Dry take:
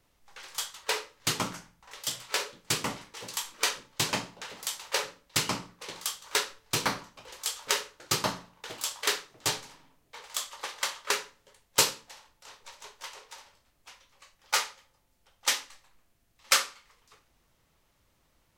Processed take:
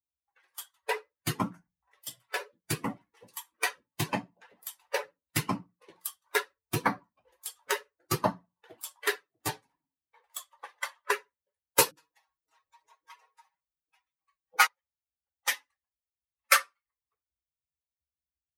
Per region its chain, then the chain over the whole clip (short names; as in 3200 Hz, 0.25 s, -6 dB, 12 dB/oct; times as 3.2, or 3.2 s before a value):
11.91–14.67 comb 6.3 ms, depth 89% + bands offset in time lows, highs 60 ms, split 460 Hz
whole clip: per-bin expansion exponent 2; HPF 82 Hz 24 dB/oct; band shelf 4800 Hz -9.5 dB; gain +7.5 dB